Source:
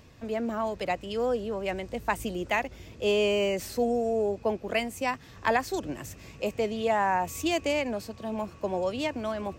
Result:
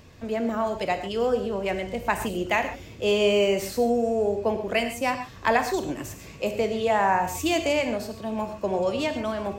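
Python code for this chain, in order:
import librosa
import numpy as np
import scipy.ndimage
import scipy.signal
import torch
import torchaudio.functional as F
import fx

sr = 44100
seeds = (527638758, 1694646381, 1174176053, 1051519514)

y = fx.rev_gated(x, sr, seeds[0], gate_ms=160, shape='flat', drr_db=6.5)
y = F.gain(torch.from_numpy(y), 3.0).numpy()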